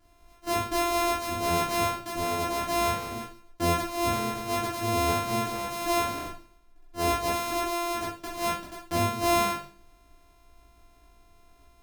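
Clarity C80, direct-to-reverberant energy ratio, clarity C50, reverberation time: 10.5 dB, −7.5 dB, 5.0 dB, 0.40 s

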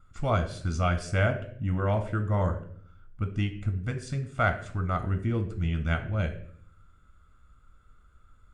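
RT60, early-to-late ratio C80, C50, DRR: 0.55 s, 15.0 dB, 11.5 dB, 6.5 dB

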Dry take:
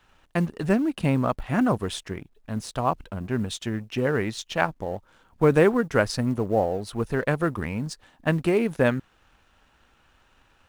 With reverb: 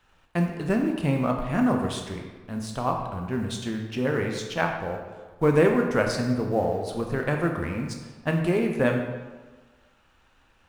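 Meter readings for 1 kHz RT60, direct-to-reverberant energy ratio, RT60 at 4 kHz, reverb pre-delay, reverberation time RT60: 1.4 s, 2.0 dB, 0.95 s, 10 ms, 1.4 s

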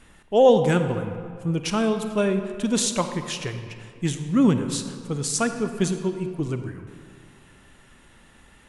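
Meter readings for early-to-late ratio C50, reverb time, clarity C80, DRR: 8.0 dB, 2.2 s, 9.0 dB, 7.5 dB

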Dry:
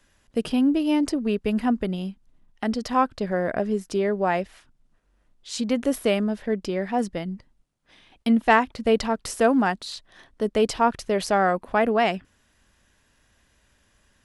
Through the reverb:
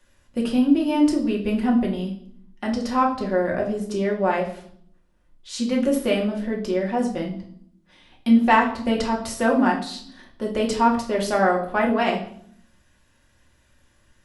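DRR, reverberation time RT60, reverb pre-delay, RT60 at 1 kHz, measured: −2.0 dB, 0.60 s, 3 ms, 0.60 s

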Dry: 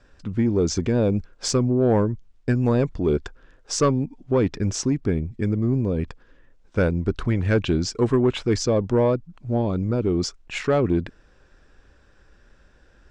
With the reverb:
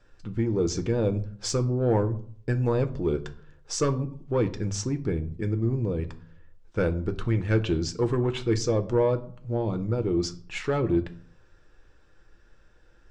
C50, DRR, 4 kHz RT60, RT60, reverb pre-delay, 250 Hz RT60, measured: 16.5 dB, 7.0 dB, 0.35 s, 0.50 s, 6 ms, 0.65 s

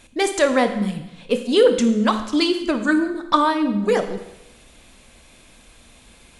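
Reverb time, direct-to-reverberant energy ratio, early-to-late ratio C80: 0.95 s, 7.0 dB, 12.0 dB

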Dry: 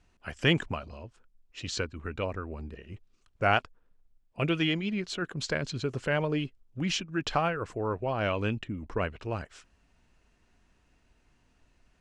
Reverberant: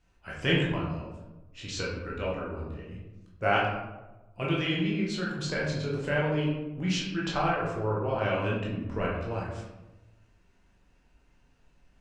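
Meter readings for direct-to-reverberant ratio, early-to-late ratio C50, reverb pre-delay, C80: −5.0 dB, 2.0 dB, 13 ms, 5.0 dB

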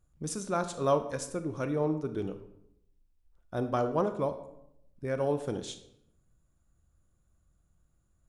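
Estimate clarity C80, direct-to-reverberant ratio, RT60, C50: 14.0 dB, 9.0 dB, 0.75 s, 11.5 dB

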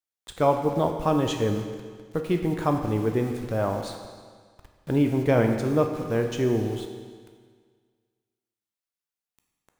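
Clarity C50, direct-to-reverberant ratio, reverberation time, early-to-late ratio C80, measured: 6.0 dB, 4.0 dB, 1.7 s, 7.5 dB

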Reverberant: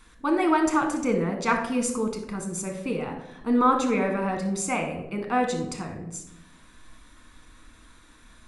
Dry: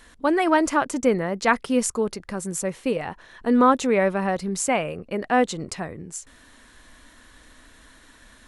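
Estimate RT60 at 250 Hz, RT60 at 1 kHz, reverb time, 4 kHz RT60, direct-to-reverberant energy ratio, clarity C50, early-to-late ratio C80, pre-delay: 1.3 s, 0.80 s, 0.90 s, 0.50 s, 3.5 dB, 7.0 dB, 10.0 dB, 6 ms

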